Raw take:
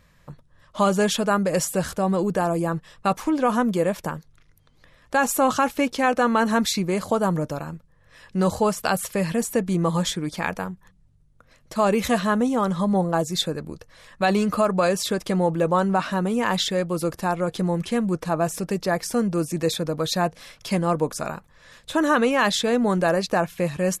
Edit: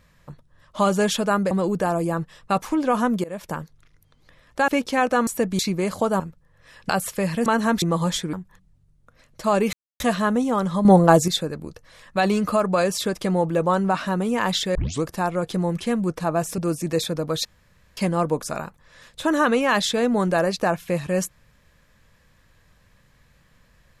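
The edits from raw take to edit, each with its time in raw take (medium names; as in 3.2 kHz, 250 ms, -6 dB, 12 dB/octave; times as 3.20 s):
1.51–2.06 s: delete
3.79–4.11 s: fade in, from -23 dB
5.23–5.74 s: delete
6.33–6.69 s: swap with 9.43–9.75 s
7.30–7.67 s: delete
8.36–8.86 s: delete
10.26–10.65 s: delete
12.05 s: insert silence 0.27 s
12.90–13.33 s: gain +8.5 dB
16.80 s: tape start 0.28 s
18.63–19.28 s: delete
20.15–20.67 s: room tone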